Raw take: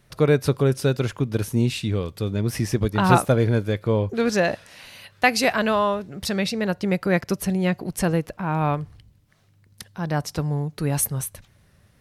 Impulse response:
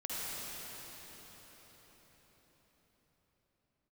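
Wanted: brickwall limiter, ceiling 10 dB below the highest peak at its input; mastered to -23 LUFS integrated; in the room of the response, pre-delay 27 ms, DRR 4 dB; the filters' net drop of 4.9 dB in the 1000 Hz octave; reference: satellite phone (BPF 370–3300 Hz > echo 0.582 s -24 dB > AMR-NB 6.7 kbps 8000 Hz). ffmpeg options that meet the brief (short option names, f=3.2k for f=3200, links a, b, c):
-filter_complex "[0:a]equalizer=f=1k:t=o:g=-6.5,alimiter=limit=-14dB:level=0:latency=1,asplit=2[a][b];[1:a]atrim=start_sample=2205,adelay=27[c];[b][c]afir=irnorm=-1:irlink=0,volume=-8dB[d];[a][d]amix=inputs=2:normalize=0,highpass=370,lowpass=3.3k,aecho=1:1:582:0.0631,volume=8dB" -ar 8000 -c:a libopencore_amrnb -b:a 6700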